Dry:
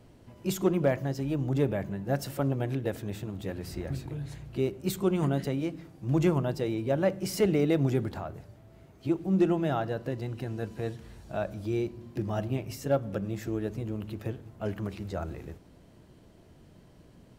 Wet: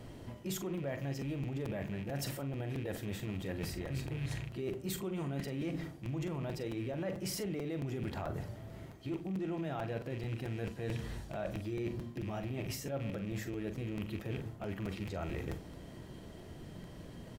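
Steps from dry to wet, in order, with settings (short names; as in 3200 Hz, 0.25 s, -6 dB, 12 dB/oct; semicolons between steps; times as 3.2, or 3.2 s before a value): rattling part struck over -37 dBFS, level -38 dBFS; limiter -25.5 dBFS, peak gain reduction 10.5 dB; reverse; compressor 10:1, threshold -41 dBFS, peak gain reduction 13 dB; reverse; doubler 43 ms -10 dB; small resonant body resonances 1900/3200 Hz, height 9 dB; crackling interface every 0.22 s, samples 256, repeat, from 0.77; gain +6 dB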